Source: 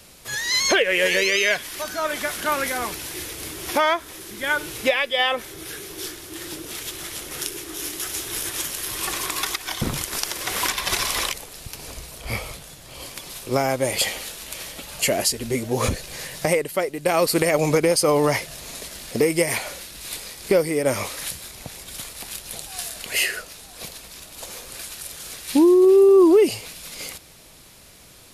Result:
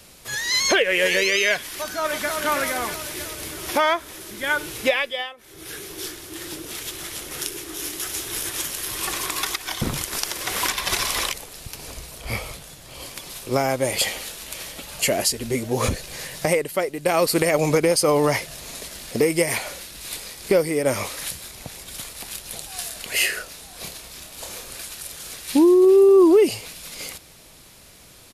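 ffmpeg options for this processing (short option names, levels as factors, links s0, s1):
-filter_complex "[0:a]asplit=2[s0][s1];[s1]afade=t=in:st=1.72:d=0.01,afade=t=out:st=2.32:d=0.01,aecho=0:1:320|640|960|1280|1600|1920|2240|2560|2880:0.595662|0.357397|0.214438|0.128663|0.0771978|0.0463187|0.0277912|0.0166747|0.0100048[s2];[s0][s2]amix=inputs=2:normalize=0,asettb=1/sr,asplit=3[s3][s4][s5];[s3]atrim=end=23.174[s6];[s4]atrim=start=23.17:end=24.74,asetpts=PTS-STARTPTS,afade=t=in:d=0.004:c=qsin,afade=t=out:st=1.566:d=0.004:c=qsin,asplit=2[s7][s8];[s8]adelay=30,volume=0.562[s9];[s7][s9]amix=inputs=2:normalize=0,atrim=end_sample=69237[s10];[s5]atrim=start=24.736[s11];[s6][s10]acrossfade=d=0.004:c1=hsin:c2=qsin[s12];[s12][s11]acrossfade=d=0.004:c1=qsin:c2=hsin,asplit=3[s13][s14][s15];[s13]atrim=end=5.34,asetpts=PTS-STARTPTS,afade=t=out:st=4.96:d=0.38:silence=0.0707946[s16];[s14]atrim=start=5.34:end=5.37,asetpts=PTS-STARTPTS,volume=0.0708[s17];[s15]atrim=start=5.37,asetpts=PTS-STARTPTS,afade=t=in:d=0.38:silence=0.0707946[s18];[s16][s17][s18]concat=n=3:v=0:a=1"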